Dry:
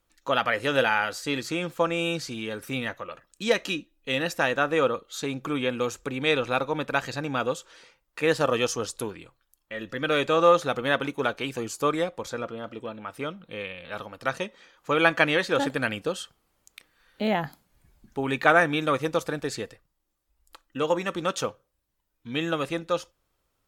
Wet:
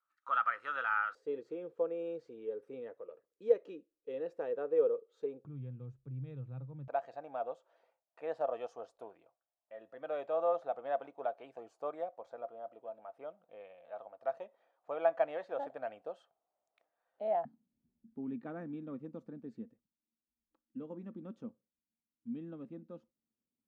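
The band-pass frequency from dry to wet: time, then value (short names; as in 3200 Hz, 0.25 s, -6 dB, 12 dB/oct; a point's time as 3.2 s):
band-pass, Q 8.2
1300 Hz
from 1.15 s 450 Hz
from 5.45 s 130 Hz
from 6.88 s 680 Hz
from 17.45 s 230 Hz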